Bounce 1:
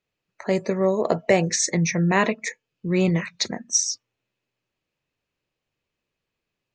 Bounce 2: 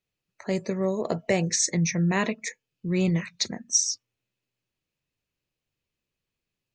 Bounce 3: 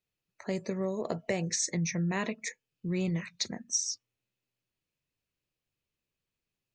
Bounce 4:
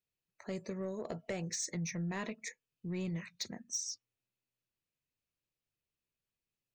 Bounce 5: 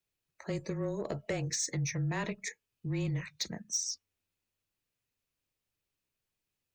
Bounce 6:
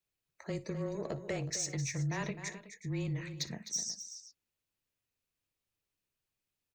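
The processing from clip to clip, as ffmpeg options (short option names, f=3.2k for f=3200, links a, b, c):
-af "equalizer=f=870:w=0.32:g=-7.5"
-af "acompressor=threshold=-26dB:ratio=2,volume=-3.5dB"
-af "asoftclip=type=tanh:threshold=-22dB,volume=-6dB"
-af "afreqshift=-25,volume=4.5dB"
-af "aecho=1:1:59|257|370:0.112|0.282|0.158,volume=-2.5dB"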